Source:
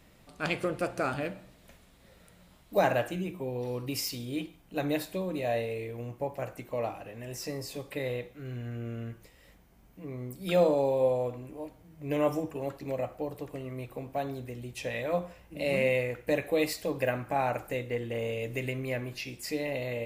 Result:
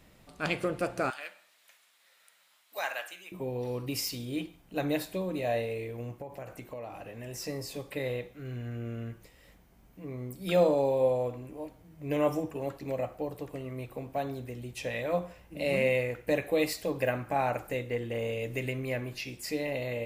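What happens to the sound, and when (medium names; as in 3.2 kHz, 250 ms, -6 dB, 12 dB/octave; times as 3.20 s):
1.10–3.32 s: high-pass 1.3 kHz
6.21–7.35 s: compression, threshold -37 dBFS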